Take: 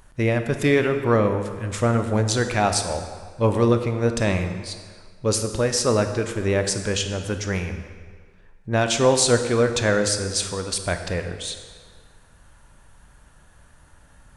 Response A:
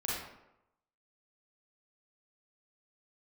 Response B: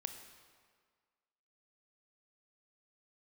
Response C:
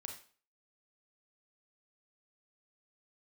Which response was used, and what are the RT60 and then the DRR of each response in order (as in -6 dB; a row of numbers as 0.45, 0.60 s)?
B; 0.90, 1.8, 0.40 s; -6.5, 7.0, 2.5 dB